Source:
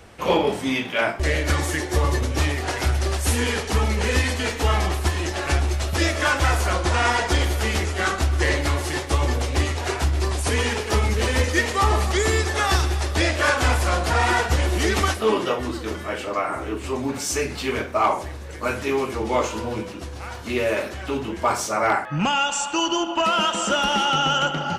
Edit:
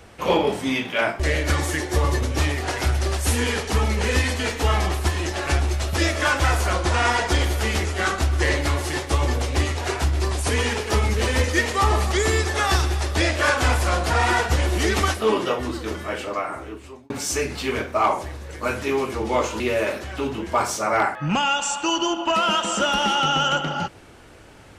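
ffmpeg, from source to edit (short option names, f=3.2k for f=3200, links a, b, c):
-filter_complex "[0:a]asplit=3[a][b][c];[a]atrim=end=17.1,asetpts=PTS-STARTPTS,afade=t=out:st=16.2:d=0.9[d];[b]atrim=start=17.1:end=19.602,asetpts=PTS-STARTPTS,afade=t=in:d=0.004:c=hsin[e];[c]atrim=start=20.498[f];[d][e]concat=n=2:v=0:a=1[g];[g][f]acrossfade=d=0.004:c1=hsin:c2=hsin"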